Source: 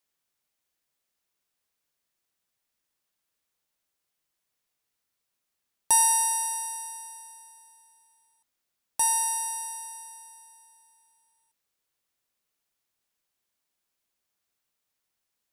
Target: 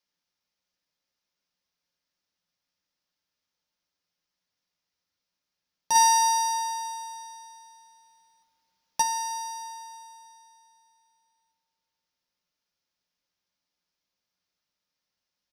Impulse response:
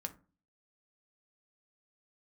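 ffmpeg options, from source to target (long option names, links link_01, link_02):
-filter_complex "[0:a]aecho=1:1:314|628|942|1256:0.0794|0.0413|0.0215|0.0112[link_01];[1:a]atrim=start_sample=2205,atrim=end_sample=6174[link_02];[link_01][link_02]afir=irnorm=-1:irlink=0,asplit=3[link_03][link_04][link_05];[link_03]afade=type=out:start_time=5.94:duration=0.02[link_06];[link_04]acontrast=80,afade=type=in:start_time=5.94:duration=0.02,afade=type=out:start_time=9.01:duration=0.02[link_07];[link_05]afade=type=in:start_time=9.01:duration=0.02[link_08];[link_06][link_07][link_08]amix=inputs=3:normalize=0,highshelf=frequency=6800:width_type=q:width=3:gain=-8"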